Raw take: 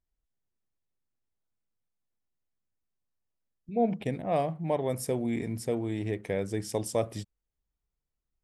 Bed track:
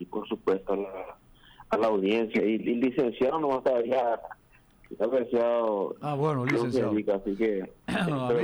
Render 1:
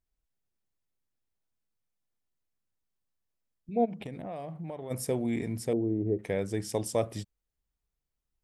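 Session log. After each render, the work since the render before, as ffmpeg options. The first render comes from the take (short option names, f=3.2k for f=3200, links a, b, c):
-filter_complex "[0:a]asplit=3[a][b][c];[a]afade=t=out:st=3.84:d=0.02[d];[b]acompressor=threshold=-35dB:ratio=8:attack=3.2:release=140:knee=1:detection=peak,afade=t=in:st=3.84:d=0.02,afade=t=out:st=4.9:d=0.02[e];[c]afade=t=in:st=4.9:d=0.02[f];[d][e][f]amix=inputs=3:normalize=0,asettb=1/sr,asplit=3[g][h][i];[g]atrim=end=5.734[j];[h]atrim=start=5.73:end=6.19,asetpts=PTS-STARTPTS,afade=t=in:d=0.004:c=qsin,afade=t=out:st=0.456:d=0.004:c=qsin,lowpass=f=430:t=q:w=1.6[k];[i]atrim=start=6.186[l];[j][k]acrossfade=d=0.004:c1=hsin:c2=qsin[m];[m][l]acrossfade=d=0.004:c1=qsin:c2=hsin"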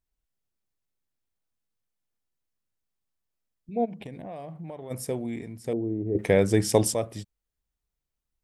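-filter_complex "[0:a]asettb=1/sr,asplit=3[a][b][c];[a]atrim=end=3.904[d];[b]atrim=start=3.9:end=4.38,asetpts=PTS-STARTPTS,afade=t=in:d=0.004:c=qsin,afade=t=out:st=0.476:d=0.004:c=qsin,asuperstop=centerf=1300:order=4:qfactor=8[e];[c]atrim=start=4.376[f];[d][e]acrossfade=d=0.004:c1=hsin:c2=qsin[g];[g][f]acrossfade=d=0.004:c1=qsin:c2=hsin,asplit=4[h][i][j][k];[h]atrim=end=5.64,asetpts=PTS-STARTPTS,afade=t=out:st=5.09:d=0.55:silence=0.334965[l];[i]atrim=start=5.64:end=6.152,asetpts=PTS-STARTPTS,afade=t=in:d=0.004:c=hsin:silence=0.334965[m];[j]atrim=start=6.148:end=6.942,asetpts=PTS-STARTPTS,volume=10.5dB[n];[k]atrim=start=6.938[o];[l][m]concat=n=2:v=0:a=1[p];[p][n]acrossfade=d=0.004:c1=hsin:c2=hsin[q];[q][o]acrossfade=d=0.004:c1=hsin:c2=hsin"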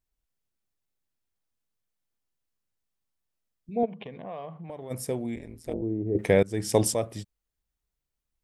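-filter_complex "[0:a]asettb=1/sr,asplit=3[a][b][c];[a]atrim=end=3.834[d];[b]atrim=start=3.83:end=4.7,asetpts=PTS-STARTPTS,afade=t=in:d=0.004:c=qsin,afade=t=out:st=0.866:d=0.004:c=qsin,highpass=150,equalizer=f=300:t=q:w=4:g=-7,equalizer=f=450:t=q:w=4:g=4,equalizer=f=1.1k:t=q:w=4:g=9,equalizer=f=3.1k:t=q:w=4:g=6,lowpass=f=3.7k:w=0.5412,lowpass=f=3.7k:w=1.3066[e];[c]atrim=start=4.696[f];[d][e]acrossfade=d=0.004:c1=hsin:c2=qsin[g];[g][f]acrossfade=d=0.004:c1=qsin:c2=hsin,asettb=1/sr,asplit=3[h][i][j];[h]atrim=end=5.354[k];[i]atrim=start=5.35:end=5.82,asetpts=PTS-STARTPTS,afade=t=in:d=0.004:c=qsin,afade=t=out:st=0.466:d=0.004:c=qsin,tremolo=f=160:d=0.974[l];[j]atrim=start=5.816[m];[k][l]acrossfade=d=0.004:c1=hsin:c2=qsin[n];[n][m]acrossfade=d=0.004:c1=qsin:c2=hsin,asplit=2[o][p];[o]atrim=end=6.43,asetpts=PTS-STARTPTS,afade=t=out:st=6.426:d=0.004:c=hsin:silence=0.0749894[q];[p]atrim=start=6.43,asetpts=PTS-STARTPTS,afade=t=in:d=0.4:silence=0.0749894[r];[q][r]concat=n=2:v=0:a=1"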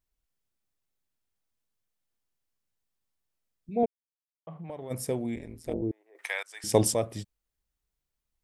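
-filter_complex "[0:a]asettb=1/sr,asplit=3[a][b][c];[a]atrim=end=5.914[d];[b]atrim=start=5.91:end=6.64,asetpts=PTS-STARTPTS,afade=t=in:d=0.004:c=qsin,afade=t=out:st=0.726:d=0.004:c=qsin,highpass=f=990:w=0.5412,highpass=f=990:w=1.3066[e];[c]atrim=start=6.636[f];[d][e]acrossfade=d=0.004:c1=hsin:c2=qsin[g];[g][f]acrossfade=d=0.004:c1=qsin:c2=hsin,asplit=3[h][i][j];[h]atrim=end=3.86,asetpts=PTS-STARTPTS,afade=t=out:st=3.856:d=0.004:c=hsin[k];[i]atrim=start=3.86:end=4.47,asetpts=PTS-STARTPTS,volume=0[l];[j]atrim=start=4.47,asetpts=PTS-STARTPTS,afade=t=in:d=0.004:c=hsin[m];[k][l][m]concat=n=3:v=0:a=1"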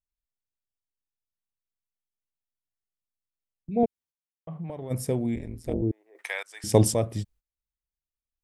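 -af "agate=range=-19dB:threshold=-58dB:ratio=16:detection=peak,lowshelf=f=230:g=10"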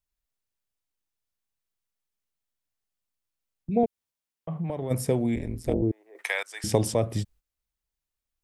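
-filter_complex "[0:a]asplit=2[a][b];[b]alimiter=limit=-15.5dB:level=0:latency=1:release=301,volume=-2dB[c];[a][c]amix=inputs=2:normalize=0,acrossover=split=430|4200[d][e][f];[d]acompressor=threshold=-24dB:ratio=4[g];[e]acompressor=threshold=-23dB:ratio=4[h];[f]acompressor=threshold=-35dB:ratio=4[i];[g][h][i]amix=inputs=3:normalize=0"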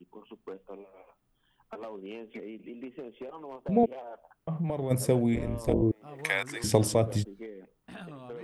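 -filter_complex "[1:a]volume=-16.5dB[a];[0:a][a]amix=inputs=2:normalize=0"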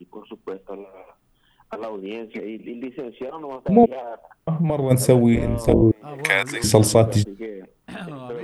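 -af "volume=10dB,alimiter=limit=-1dB:level=0:latency=1"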